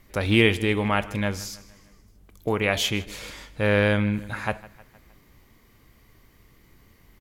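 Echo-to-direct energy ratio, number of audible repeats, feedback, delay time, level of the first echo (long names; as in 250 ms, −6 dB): −18.5 dB, 3, 54%, 155 ms, −20.0 dB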